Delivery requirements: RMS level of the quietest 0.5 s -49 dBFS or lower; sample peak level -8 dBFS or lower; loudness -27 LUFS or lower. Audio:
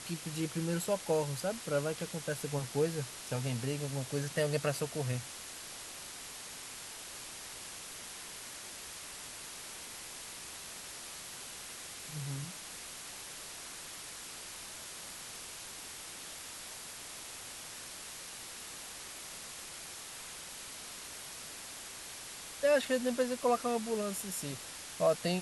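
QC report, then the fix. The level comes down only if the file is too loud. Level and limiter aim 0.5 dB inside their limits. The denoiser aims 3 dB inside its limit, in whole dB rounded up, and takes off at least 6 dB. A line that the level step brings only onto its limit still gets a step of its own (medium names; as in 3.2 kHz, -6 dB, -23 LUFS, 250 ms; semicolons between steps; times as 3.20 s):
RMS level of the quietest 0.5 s -47 dBFS: fail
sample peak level -17.5 dBFS: pass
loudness -38.0 LUFS: pass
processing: noise reduction 6 dB, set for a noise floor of -47 dBFS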